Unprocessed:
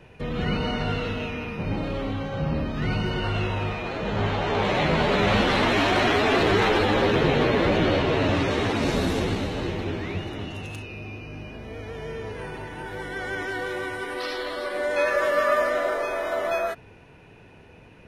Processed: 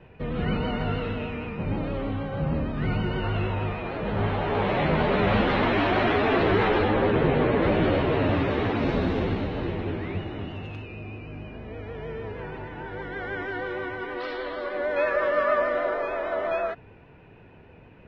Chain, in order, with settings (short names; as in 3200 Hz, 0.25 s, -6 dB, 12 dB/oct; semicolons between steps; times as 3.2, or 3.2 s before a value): 6.88–7.62 high shelf 5100 Hz -11 dB; vibrato 6.4 Hz 43 cents; air absorption 320 m